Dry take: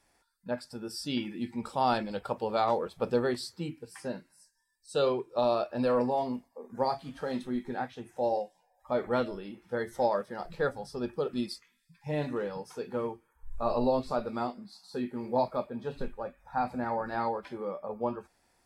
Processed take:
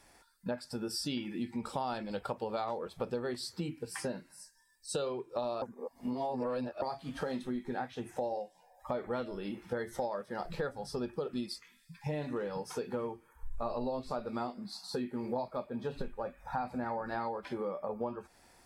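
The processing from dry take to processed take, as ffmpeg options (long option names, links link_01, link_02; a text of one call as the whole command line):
ffmpeg -i in.wav -filter_complex "[0:a]asplit=3[link_01][link_02][link_03];[link_01]atrim=end=5.622[link_04];[link_02]atrim=start=5.618:end=6.822,asetpts=PTS-STARTPTS,areverse[link_05];[link_03]atrim=start=6.818[link_06];[link_04][link_05]acrossfade=duration=0.004:curve1=hsin:curve2=hsin[link_07];[link_07][link_06]acrossfade=duration=0.004:curve1=hsin:curve2=hsin,acompressor=threshold=-42dB:ratio=6,volume=8dB" out.wav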